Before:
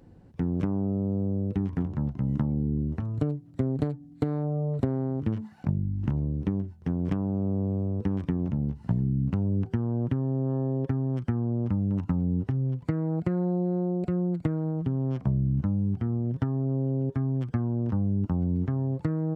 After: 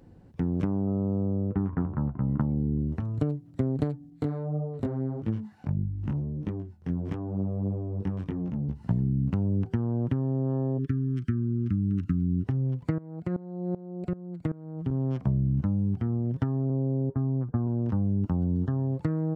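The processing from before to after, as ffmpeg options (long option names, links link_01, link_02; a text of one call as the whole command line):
ffmpeg -i in.wav -filter_complex "[0:a]asettb=1/sr,asplit=3[link_01][link_02][link_03];[link_01]atrim=end=0.874[link_04];[link_02]atrim=start=0.87:end=2.41,asetpts=PTS-STARTPTS,afade=type=in:duration=0.004:curve=qsin,afade=type=out:start_time=1.536:duration=0.004:curve=qsin,lowpass=frequency=1300:width_type=q:width=2.3[link_05];[link_03]atrim=start=2.406[link_06];[link_04][link_05]acrossfade=duration=0.004:curve1=hsin:curve2=qsin[link_07];[link_07][link_06]acrossfade=duration=0.004:curve1=qsin:curve2=hsin,asettb=1/sr,asplit=3[link_08][link_09][link_10];[link_08]atrim=end=4.104[link_11];[link_09]atrim=start=4.1:end=8.69,asetpts=PTS-STARTPTS,afade=type=in:duration=0.004:curve=qsin,afade=type=out:start_time=4.586:duration=0.004:curve=qsin,flanger=delay=17.5:depth=4.8:speed=1.6[link_12];[link_10]atrim=start=8.686[link_13];[link_11][link_12]acrossfade=duration=0.004:curve1=hsin:curve2=qsin[link_14];[link_14][link_13]acrossfade=duration=0.004:curve1=qsin:curve2=hsin,asplit=3[link_15][link_16][link_17];[link_15]afade=type=out:start_time=10.77:duration=0.02[link_18];[link_16]asuperstop=centerf=700:order=8:qfactor=0.75,afade=type=in:start_time=10.77:duration=0.02,afade=type=out:start_time=12.44:duration=0.02[link_19];[link_17]afade=type=in:start_time=12.44:duration=0.02[link_20];[link_18][link_19][link_20]amix=inputs=3:normalize=0,asettb=1/sr,asplit=3[link_21][link_22][link_23];[link_21]atrim=end=12.984[link_24];[link_22]atrim=start=12.98:end=14.91,asetpts=PTS-STARTPTS,afade=type=in:duration=0.004:curve=qsin,afade=type=out:start_time=1.926:duration=0.004:curve=qsin,aeval=exprs='val(0)*pow(10,-19*if(lt(mod(-2.6*n/s,1),2*abs(-2.6)/1000),1-mod(-2.6*n/s,1)/(2*abs(-2.6)/1000),(mod(-2.6*n/s,1)-2*abs(-2.6)/1000)/(1-2*abs(-2.6)/1000))/20)':channel_layout=same[link_25];[link_23]atrim=start=14.906[link_26];[link_24][link_25]acrossfade=duration=0.004:curve1=hsin:curve2=qsin[link_27];[link_27][link_26]acrossfade=duration=0.004:curve1=qsin:curve2=hsin,asettb=1/sr,asplit=3[link_28][link_29][link_30];[link_28]atrim=end=16.704[link_31];[link_29]atrim=start=16.7:end=17.67,asetpts=PTS-STARTPTS,afade=type=in:duration=0.004:curve=qsin,afade=type=out:start_time=0.966:duration=0.004:curve=qsin,lowpass=frequency=1300:width=0.5412,lowpass=frequency=1300:width=1.3066[link_32];[link_30]atrim=start=17.666[link_33];[link_31][link_32]acrossfade=duration=0.004:curve1=hsin:curve2=qsin[link_34];[link_34][link_33]acrossfade=duration=0.004:curve1=qsin:curve2=hsin,asettb=1/sr,asplit=3[link_35][link_36][link_37];[link_35]atrim=end=18.374[link_38];[link_36]atrim=start=18.37:end=18.8,asetpts=PTS-STARTPTS,afade=type=in:duration=0.004:curve=qsin,afade=type=out:start_time=0.426:duration=0.004:curve=qsin,asuperstop=centerf=2300:order=12:qfactor=2.5[link_39];[link_37]atrim=start=18.796[link_40];[link_38][link_39]acrossfade=duration=0.004:curve1=hsin:curve2=qsin[link_41];[link_41][link_40]acrossfade=duration=0.004:curve1=qsin:curve2=hsin" out.wav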